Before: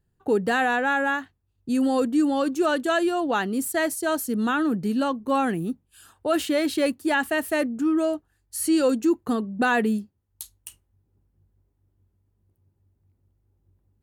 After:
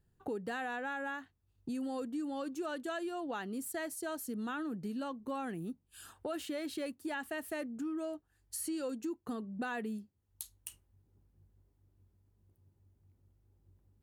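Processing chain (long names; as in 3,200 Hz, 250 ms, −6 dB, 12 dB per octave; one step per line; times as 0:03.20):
downward compressor 3 to 1, threshold −40 dBFS, peak gain reduction 17 dB
level −1.5 dB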